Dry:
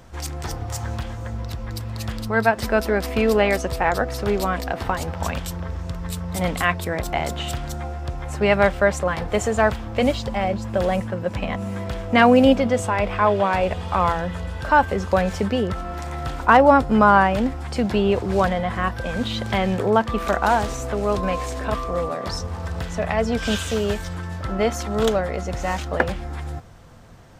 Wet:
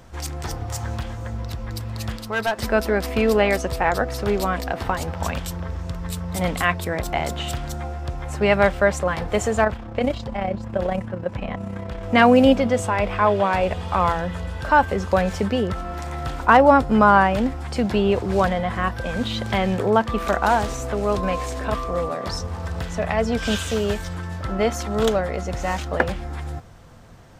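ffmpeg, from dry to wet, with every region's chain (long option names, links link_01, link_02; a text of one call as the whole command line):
ffmpeg -i in.wav -filter_complex "[0:a]asettb=1/sr,asplit=3[link_01][link_02][link_03];[link_01]atrim=end=2.164[link_04];[link_02]atrim=start=2.16:end=2.59,asetpts=PTS-STARTPTS,afade=type=in:duration=0.004:curve=qsin,afade=type=out:start_time=0.426:duration=0.004:curve=qsin,lowshelf=frequency=270:gain=-9.5,volume=17dB,asoftclip=hard,volume=-17dB[link_05];[link_03]atrim=start=2.586[link_06];[link_04][link_05]acrossfade=duration=0.004:curve1=hsin:curve2=qsin[link_07];[link_07][link_06]acrossfade=duration=0.004:curve1=qsin:curve2=hsin,asettb=1/sr,asplit=3[link_08][link_09][link_10];[link_08]atrim=end=9.644[link_11];[link_09]atrim=start=9.64:end=12.03,asetpts=PTS-STARTPTS,afade=type=in:duration=0.004:curve=qsin,afade=type=out:start_time=2.386:duration=0.004:curve=qsin,highshelf=frequency=4100:gain=-10,tremolo=f=32:d=0.571[link_12];[link_10]atrim=start=12.026[link_13];[link_11][link_12]acrossfade=duration=0.004:curve1=hsin:curve2=qsin[link_14];[link_14][link_13]acrossfade=duration=0.004:curve1=qsin:curve2=hsin" out.wav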